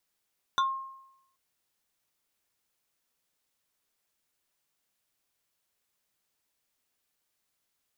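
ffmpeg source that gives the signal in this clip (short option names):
-f lavfi -i "aevalsrc='0.0944*pow(10,-3*t/0.84)*sin(2*PI*1070*t+1.2*pow(10,-3*t/0.18)*sin(2*PI*2.31*1070*t))':d=0.78:s=44100"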